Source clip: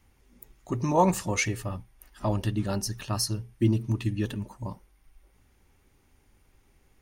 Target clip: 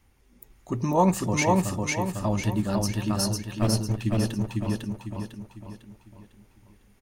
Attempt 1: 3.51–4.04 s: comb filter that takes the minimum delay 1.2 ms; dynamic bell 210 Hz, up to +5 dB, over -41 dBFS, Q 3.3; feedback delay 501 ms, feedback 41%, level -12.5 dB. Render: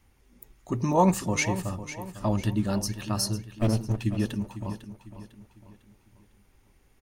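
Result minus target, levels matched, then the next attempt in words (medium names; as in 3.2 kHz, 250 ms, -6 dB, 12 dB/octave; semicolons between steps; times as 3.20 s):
echo-to-direct -10.5 dB
3.51–4.04 s: comb filter that takes the minimum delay 1.2 ms; dynamic bell 210 Hz, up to +5 dB, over -41 dBFS, Q 3.3; feedback delay 501 ms, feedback 41%, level -2 dB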